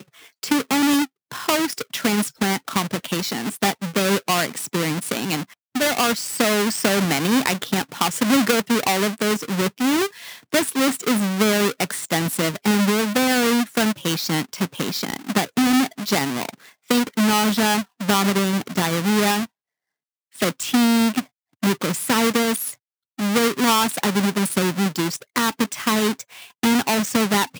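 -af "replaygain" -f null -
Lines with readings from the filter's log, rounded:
track_gain = +1.5 dB
track_peak = 0.591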